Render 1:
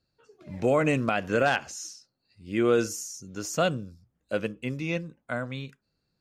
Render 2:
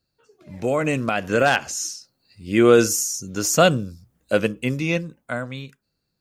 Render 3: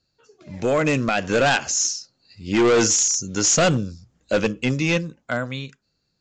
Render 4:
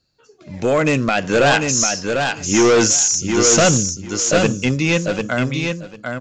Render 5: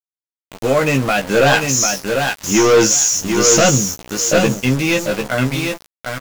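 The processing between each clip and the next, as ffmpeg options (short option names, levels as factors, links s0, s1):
-af "highshelf=f=8000:g=9.5,dynaudnorm=f=260:g=11:m=3.55"
-af "highshelf=f=4200:g=6.5,aresample=16000,asoftclip=type=hard:threshold=0.15,aresample=44100,volume=1.33"
-af "aecho=1:1:746|1492|2238:0.562|0.0956|0.0163,volume=1.5"
-filter_complex "[0:a]aeval=exprs='val(0)*gte(abs(val(0)),0.0668)':c=same,asplit=2[s0][s1];[s1]adelay=15,volume=0.596[s2];[s0][s2]amix=inputs=2:normalize=0"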